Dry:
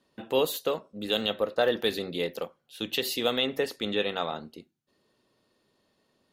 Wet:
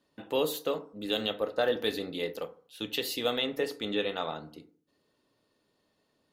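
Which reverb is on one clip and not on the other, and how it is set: FDN reverb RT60 0.47 s, low-frequency decay 1.1×, high-frequency decay 0.45×, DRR 8.5 dB; gain -3.5 dB

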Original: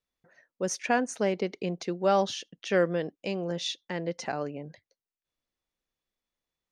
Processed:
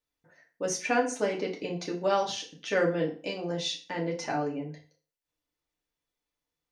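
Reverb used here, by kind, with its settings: FDN reverb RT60 0.39 s, low-frequency decay 1×, high-frequency decay 0.9×, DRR -2 dB; gain -3 dB

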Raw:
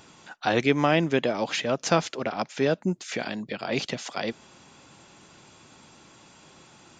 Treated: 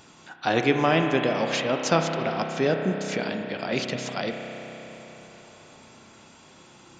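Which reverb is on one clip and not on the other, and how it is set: spring tank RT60 4 s, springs 31 ms, chirp 60 ms, DRR 3.5 dB

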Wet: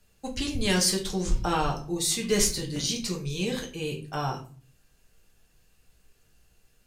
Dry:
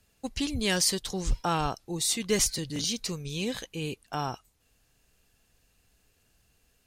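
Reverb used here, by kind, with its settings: shoebox room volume 30 m³, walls mixed, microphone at 0.53 m; gain -1 dB

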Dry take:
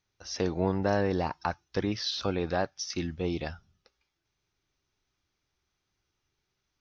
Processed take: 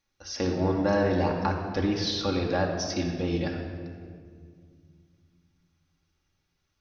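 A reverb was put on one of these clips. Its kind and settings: shoebox room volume 3800 m³, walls mixed, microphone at 2.3 m

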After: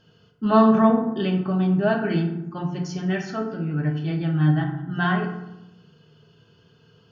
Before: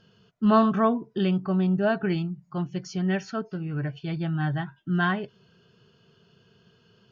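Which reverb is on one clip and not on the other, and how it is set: FDN reverb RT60 0.89 s, low-frequency decay 1.45×, high-frequency decay 0.5×, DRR 0.5 dB

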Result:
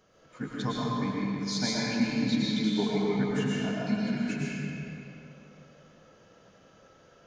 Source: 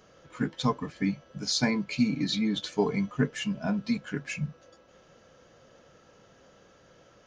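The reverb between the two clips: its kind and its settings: digital reverb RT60 2.8 s, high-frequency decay 0.75×, pre-delay 75 ms, DRR -6 dB; gain -7 dB

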